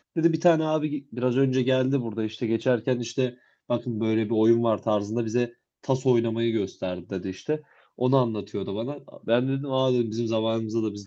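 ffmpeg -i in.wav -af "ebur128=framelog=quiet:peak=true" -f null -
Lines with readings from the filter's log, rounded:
Integrated loudness:
  I:         -25.7 LUFS
  Threshold: -35.8 LUFS
Loudness range:
  LRA:         2.7 LU
  Threshold: -46.1 LUFS
  LRA low:   -27.7 LUFS
  LRA high:  -25.0 LUFS
True peak:
  Peak:       -6.9 dBFS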